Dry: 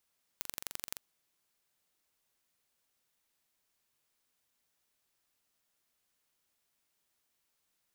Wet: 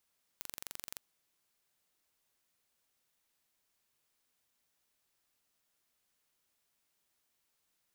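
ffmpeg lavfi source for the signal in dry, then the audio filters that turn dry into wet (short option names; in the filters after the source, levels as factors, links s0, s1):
-f lavfi -i "aevalsrc='0.335*eq(mod(n,1893),0)*(0.5+0.5*eq(mod(n,3786),0))':d=0.56:s=44100"
-af "alimiter=limit=0.188:level=0:latency=1:release=17"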